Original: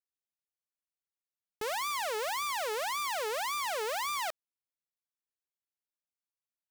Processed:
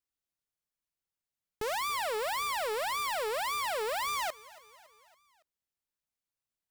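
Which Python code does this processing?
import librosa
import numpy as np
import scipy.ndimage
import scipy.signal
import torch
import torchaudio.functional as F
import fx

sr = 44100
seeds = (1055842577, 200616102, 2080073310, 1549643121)

y = fx.low_shelf(x, sr, hz=160.0, db=9.5)
y = fx.echo_feedback(y, sr, ms=280, feedback_pct=55, wet_db=-21.0)
y = np.clip(y, -10.0 ** (-29.0 / 20.0), 10.0 ** (-29.0 / 20.0))
y = fx.notch(y, sr, hz=6300.0, q=6.6, at=(1.78, 4.08))
y = F.gain(torch.from_numpy(y), 1.0).numpy()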